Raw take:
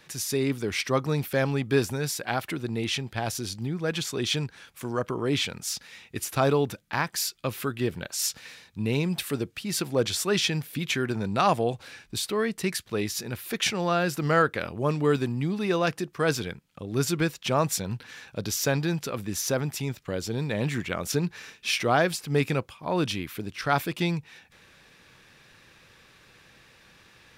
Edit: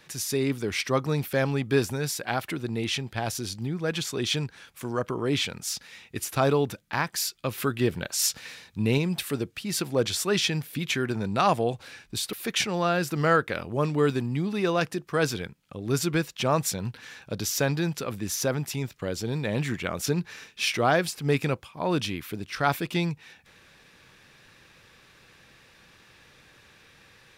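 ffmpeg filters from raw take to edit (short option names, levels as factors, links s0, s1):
-filter_complex "[0:a]asplit=4[s0][s1][s2][s3];[s0]atrim=end=7.582[s4];[s1]atrim=start=7.578:end=8.982,asetpts=PTS-STARTPTS,volume=1.41[s5];[s2]atrim=start=8.978:end=12.332[s6];[s3]atrim=start=13.388[s7];[s4][s5]acrossfade=d=0.004:c1=hsin:c2=hsin[s8];[s8][s6]acrossfade=d=0.004:c1=hsin:c2=hsin[s9];[s9][s7]acrossfade=d=0.004:c1=hsin:c2=hsin"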